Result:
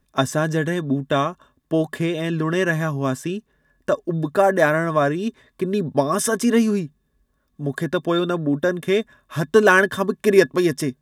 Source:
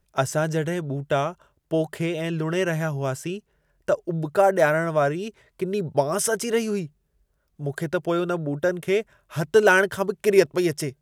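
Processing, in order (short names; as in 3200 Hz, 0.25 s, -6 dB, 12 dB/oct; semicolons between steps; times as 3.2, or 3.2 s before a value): small resonant body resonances 250/1100/1700/3600 Hz, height 15 dB, ringing for 70 ms; gain +1 dB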